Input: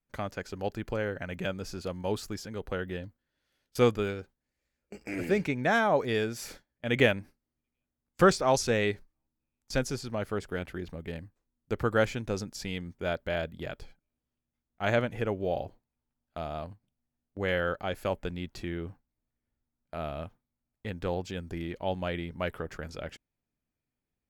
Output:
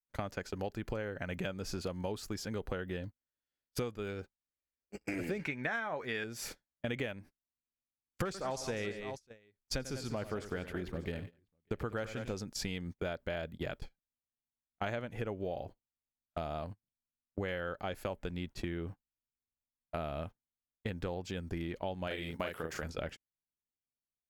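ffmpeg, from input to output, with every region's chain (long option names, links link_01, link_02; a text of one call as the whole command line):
ffmpeg -i in.wav -filter_complex "[0:a]asettb=1/sr,asplit=3[link_01][link_02][link_03];[link_01]atrim=end=5.394[link_04];[link_02]atrim=start=5.39:end=6.24,asetpts=PTS-STARTPTS,afade=type=in:duration=0.004:curve=qsin,afade=type=out:start_time=0.846:duration=0.004:curve=qsin,equalizer=frequency=1800:width_type=o:width=1.7:gain=10.5,asplit=2[link_05][link_06];[link_06]adelay=13,volume=-11dB[link_07];[link_05][link_07]amix=inputs=2:normalize=0,atrim=end_sample=37485[link_08];[link_03]atrim=start=6.236[link_09];[link_04][link_08]acrossfade=duration=0.004:curve1=hsin:curve2=qsin[link_10];[link_10][link_09]acrossfade=duration=0.004:curve1=qsin:curve2=hsin,asettb=1/sr,asplit=3[link_11][link_12][link_13];[link_11]atrim=end=8.254[link_14];[link_12]atrim=start=8.25:end=12.34,asetpts=PTS-STARTPTS,afade=type=in:duration=0.004:curve=qsin,afade=type=out:start_time=4.086:duration=0.004:curve=qsin,volume=15dB,asoftclip=hard,volume=-15dB,aecho=1:1:93|195|596:0.188|0.211|0.1,atrim=end_sample=180369[link_15];[link_13]atrim=start=12.336[link_16];[link_14][link_15]acrossfade=duration=0.004:curve1=hsin:curve2=qsin[link_17];[link_17][link_16]acrossfade=duration=0.004:curve1=qsin:curve2=hsin,asettb=1/sr,asplit=3[link_18][link_19][link_20];[link_18]atrim=end=22.074[link_21];[link_19]atrim=start=22.07:end=22.83,asetpts=PTS-STARTPTS,afade=type=in:duration=0.004:curve=qsin,afade=type=out:start_time=0.756:duration=0.004:curve=qsin,highpass=frequency=170:poles=1,highshelf=frequency=4100:gain=9,asplit=2[link_22][link_23];[link_23]adelay=37,volume=-2.5dB[link_24];[link_22][link_24]amix=inputs=2:normalize=0,atrim=end_sample=33516[link_25];[link_20]atrim=start=22.826[link_26];[link_21][link_25]acrossfade=duration=0.004:curve1=hsin:curve2=qsin[link_27];[link_27][link_26]acrossfade=duration=0.004:curve1=qsin:curve2=hsin,agate=range=-25dB:threshold=-42dB:ratio=16:detection=peak,acompressor=threshold=-40dB:ratio=12,volume=6dB" out.wav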